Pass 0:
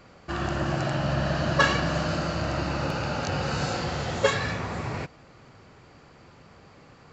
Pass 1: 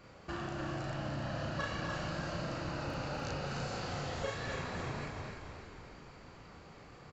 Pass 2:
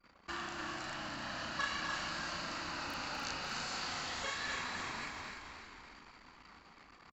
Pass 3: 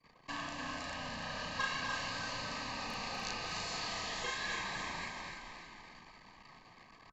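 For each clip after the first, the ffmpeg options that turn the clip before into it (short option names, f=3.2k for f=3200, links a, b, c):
-filter_complex "[0:a]asplit=2[a][b];[b]aecho=0:1:34.99|247.8:0.891|0.355[c];[a][c]amix=inputs=2:normalize=0,acompressor=threshold=-32dB:ratio=4,asplit=2[d][e];[e]asplit=7[f][g][h][i][j][k][l];[f]adelay=296,afreqshift=-31,volume=-6dB[m];[g]adelay=592,afreqshift=-62,volume=-11.4dB[n];[h]adelay=888,afreqshift=-93,volume=-16.7dB[o];[i]adelay=1184,afreqshift=-124,volume=-22.1dB[p];[j]adelay=1480,afreqshift=-155,volume=-27.4dB[q];[k]adelay=1776,afreqshift=-186,volume=-32.8dB[r];[l]adelay=2072,afreqshift=-217,volume=-38.1dB[s];[m][n][o][p][q][r][s]amix=inputs=7:normalize=0[t];[d][t]amix=inputs=2:normalize=0,volume=-6dB"
-af "aemphasis=mode=production:type=75fm,anlmdn=0.00158,equalizer=f=125:t=o:w=1:g=-11,equalizer=f=250:t=o:w=1:g=6,equalizer=f=500:t=o:w=1:g=-6,equalizer=f=1k:t=o:w=1:g=8,equalizer=f=2k:t=o:w=1:g=7,equalizer=f=4k:t=o:w=1:g=5,volume=-6.5dB"
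-af "lowpass=11k,afreqshift=-55,asuperstop=centerf=1400:order=20:qfactor=6.1,volume=1dB"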